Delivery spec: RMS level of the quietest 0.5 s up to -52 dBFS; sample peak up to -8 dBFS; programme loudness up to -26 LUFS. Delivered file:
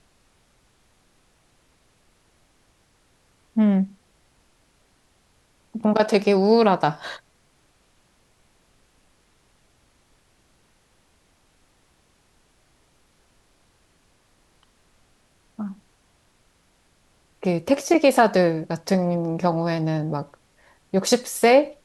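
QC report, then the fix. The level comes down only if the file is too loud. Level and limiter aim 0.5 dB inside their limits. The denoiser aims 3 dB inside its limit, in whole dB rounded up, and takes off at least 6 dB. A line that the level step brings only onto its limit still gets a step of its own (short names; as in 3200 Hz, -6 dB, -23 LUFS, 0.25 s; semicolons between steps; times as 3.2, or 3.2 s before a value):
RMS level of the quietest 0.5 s -62 dBFS: OK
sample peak -5.0 dBFS: fail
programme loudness -21.0 LUFS: fail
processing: gain -5.5 dB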